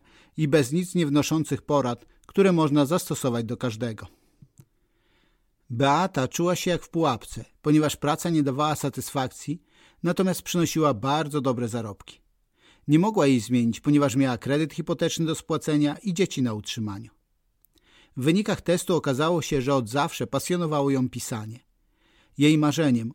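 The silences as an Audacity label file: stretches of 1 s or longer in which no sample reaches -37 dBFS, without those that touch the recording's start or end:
4.600000	5.700000	silence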